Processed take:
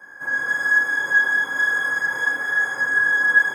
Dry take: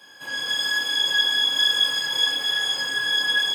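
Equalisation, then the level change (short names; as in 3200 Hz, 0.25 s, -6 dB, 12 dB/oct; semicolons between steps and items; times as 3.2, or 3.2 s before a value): resonant high shelf 2200 Hz -9.5 dB, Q 3; band shelf 3600 Hz -10 dB 1.1 oct; notch 7900 Hz, Q 20; +2.5 dB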